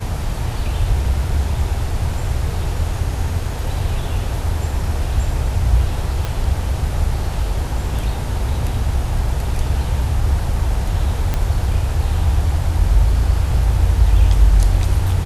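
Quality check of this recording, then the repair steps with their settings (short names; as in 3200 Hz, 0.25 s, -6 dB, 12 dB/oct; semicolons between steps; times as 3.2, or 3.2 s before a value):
6.25 pop -9 dBFS
11.34 pop -7 dBFS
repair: de-click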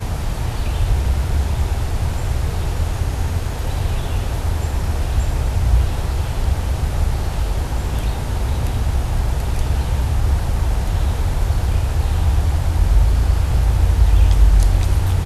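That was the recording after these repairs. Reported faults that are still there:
6.25 pop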